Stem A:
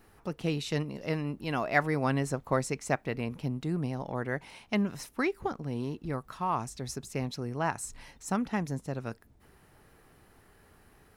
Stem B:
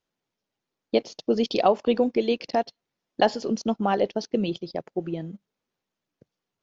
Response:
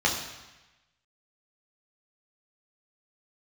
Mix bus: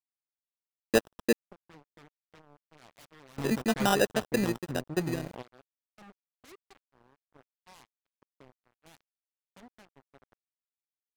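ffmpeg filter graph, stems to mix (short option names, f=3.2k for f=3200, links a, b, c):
-filter_complex "[0:a]afwtdn=0.0224,aeval=exprs='0.0562*(abs(mod(val(0)/0.0562+3,4)-2)-1)':c=same,adelay=1250,volume=-1dB[a];[1:a]agate=range=-33dB:threshold=-38dB:ratio=3:detection=peak,acrusher=samples=20:mix=1:aa=0.000001,volume=-1dB,asplit=3[b][c][d];[b]atrim=end=1.33,asetpts=PTS-STARTPTS,afade=t=out:st=1.326:d=0.004:c=hsin[e];[c]atrim=start=1.33:end=3.38,asetpts=PTS-STARTPTS,volume=0[f];[d]atrim=start=3.38,asetpts=PTS-STARTPTS,afade=t=in:d=0.004:c=hsin[g];[e][f][g]concat=n=3:v=0:a=1,asplit=2[h][i];[i]apad=whole_len=547646[j];[a][j]sidechaingate=range=-8dB:threshold=-47dB:ratio=16:detection=peak[k];[k][h]amix=inputs=2:normalize=0,aeval=exprs='sgn(val(0))*max(abs(val(0))-0.0133,0)':c=same"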